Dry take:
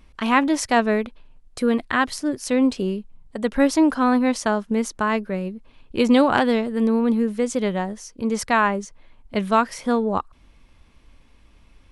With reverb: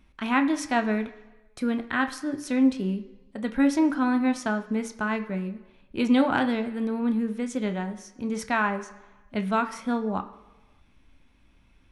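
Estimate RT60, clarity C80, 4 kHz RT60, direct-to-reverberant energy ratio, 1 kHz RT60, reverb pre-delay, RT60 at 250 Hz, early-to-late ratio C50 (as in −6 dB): 1.2 s, 16.0 dB, 1.1 s, 7.0 dB, 1.1 s, 11 ms, 0.95 s, 13.5 dB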